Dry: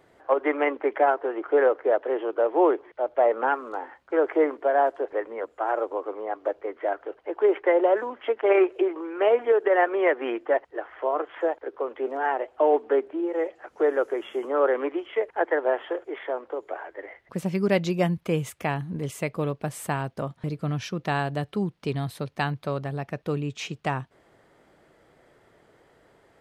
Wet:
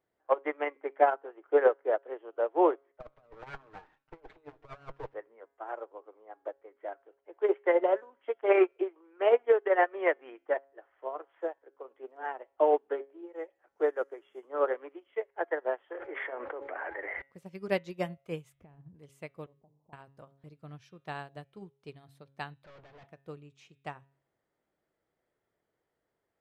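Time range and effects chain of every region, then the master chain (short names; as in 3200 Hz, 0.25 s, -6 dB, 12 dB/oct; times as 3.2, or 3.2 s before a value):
3–5.14 minimum comb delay 6.5 ms + air absorption 76 m + negative-ratio compressor -28 dBFS, ratio -0.5
15.91–17.22 synth low-pass 2000 Hz, resonance Q 2 + de-hum 277.9 Hz, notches 3 + fast leveller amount 100%
18.55–18.95 tilt -4.5 dB/oct + flutter echo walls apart 9.3 m, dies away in 0.21 s + compressor 12:1, threshold -26 dBFS
19.46–19.93 steep low-pass 1000 Hz 72 dB/oct + notches 50/100/150/200/250/300/350/400/450 Hz + compressor 2:1, threshold -42 dBFS
22.64–23.07 overdrive pedal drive 33 dB, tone 2000 Hz, clips at -16.5 dBFS + overloaded stage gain 29.5 dB + air absorption 150 m
whole clip: de-hum 137.5 Hz, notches 29; dynamic EQ 230 Hz, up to -6 dB, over -40 dBFS, Q 1.8; upward expander 2.5:1, over -33 dBFS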